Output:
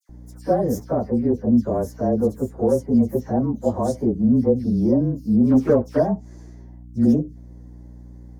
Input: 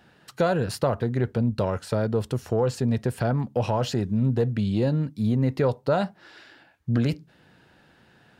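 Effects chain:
partials spread apart or drawn together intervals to 108%
drawn EQ curve 130 Hz 0 dB, 250 Hz +14 dB, 720 Hz +6 dB, 3,100 Hz −18 dB, 6,400 Hz +4 dB
0:05.44–0:05.95: leveller curve on the samples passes 1
mains hum 60 Hz, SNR 20 dB
all-pass dispersion lows, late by 94 ms, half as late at 2,100 Hz
level −2 dB

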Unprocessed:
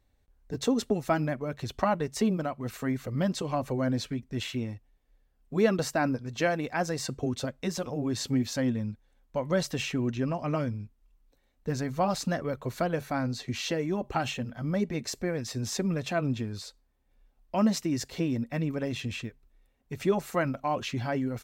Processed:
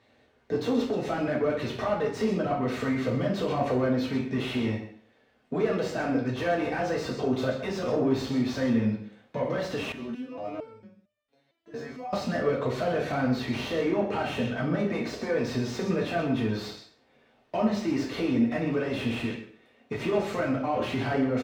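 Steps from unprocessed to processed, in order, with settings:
downward compressor, threshold −31 dBFS, peak gain reduction 12.5 dB
brickwall limiter −28.5 dBFS, peak gain reduction 10 dB
meter weighting curve D
single-tap delay 128 ms −17.5 dB
mid-hump overdrive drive 27 dB, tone 1,700 Hz, clips at −16.5 dBFS
high-pass filter 49 Hz
tilt shelving filter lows +8.5 dB, about 1,100 Hz
convolution reverb RT60 0.50 s, pre-delay 3 ms, DRR −3 dB
0:09.92–0:12.13: step-sequenced resonator 4.4 Hz 77–600 Hz
level −7.5 dB

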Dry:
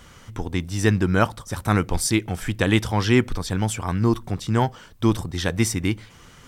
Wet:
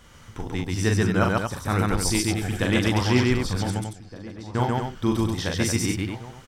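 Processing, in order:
0:03.70–0:04.55: four-pole ladder band-pass 5,400 Hz, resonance 40%
on a send: loudspeakers that aren't time-aligned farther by 14 metres −4 dB, 47 metres −1 dB, 78 metres −6 dB
on the sum: dynamic equaliser 5,100 Hz, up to +4 dB, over −40 dBFS, Q 2.8
slap from a distant wall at 260 metres, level −15 dB
level −5 dB

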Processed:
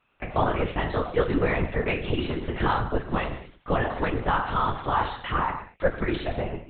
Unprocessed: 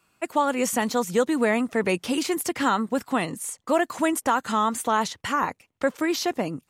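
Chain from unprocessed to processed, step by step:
Butterworth high-pass 200 Hz
reverb whose tail is shaped and stops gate 260 ms falling, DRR 2.5 dB
linear-prediction vocoder at 8 kHz whisper
level −3 dB

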